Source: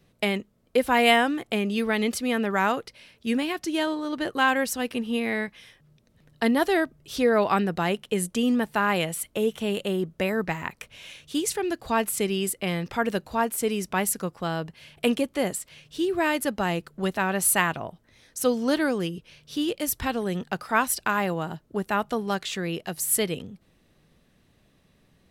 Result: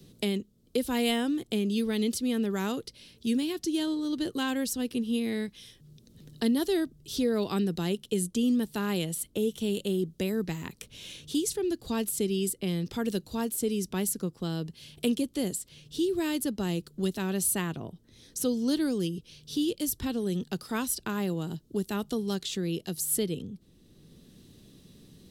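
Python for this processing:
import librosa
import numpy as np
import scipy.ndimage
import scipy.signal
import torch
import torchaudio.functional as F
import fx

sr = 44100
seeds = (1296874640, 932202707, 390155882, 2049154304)

y = fx.band_shelf(x, sr, hz=1200.0, db=-13.5, octaves=2.5)
y = fx.band_squash(y, sr, depth_pct=40)
y = y * librosa.db_to_amplitude(-1.0)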